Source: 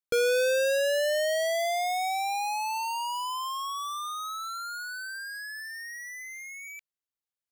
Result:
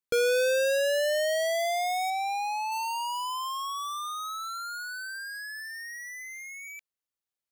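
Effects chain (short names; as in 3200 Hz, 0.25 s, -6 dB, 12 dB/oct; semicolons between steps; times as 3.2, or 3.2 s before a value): 2.1–2.72 high shelf 6000 Hz -10.5 dB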